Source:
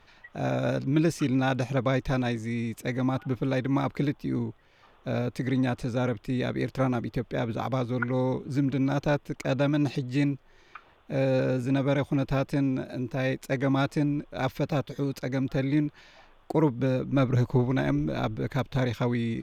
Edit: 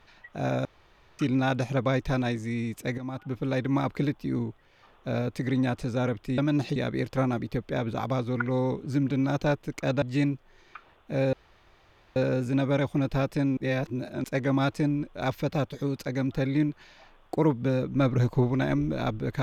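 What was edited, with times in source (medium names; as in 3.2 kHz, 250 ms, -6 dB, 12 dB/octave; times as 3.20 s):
0.65–1.19 s: room tone
2.98–3.60 s: fade in, from -12 dB
9.64–10.02 s: move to 6.38 s
11.33 s: insert room tone 0.83 s
12.74–13.41 s: reverse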